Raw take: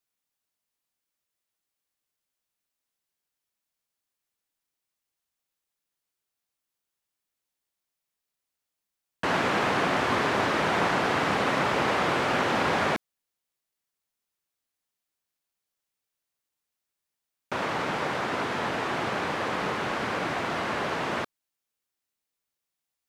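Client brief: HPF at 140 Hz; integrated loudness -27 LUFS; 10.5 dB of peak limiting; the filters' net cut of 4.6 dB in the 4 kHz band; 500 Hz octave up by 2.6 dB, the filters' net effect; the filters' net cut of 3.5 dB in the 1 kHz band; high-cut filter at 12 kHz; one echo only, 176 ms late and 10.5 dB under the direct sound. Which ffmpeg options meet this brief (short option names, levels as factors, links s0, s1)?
-af "highpass=140,lowpass=12000,equalizer=f=500:t=o:g=5,equalizer=f=1000:t=o:g=-6,equalizer=f=4000:t=o:g=-6,alimiter=level_in=1.06:limit=0.0631:level=0:latency=1,volume=0.944,aecho=1:1:176:0.299,volume=2"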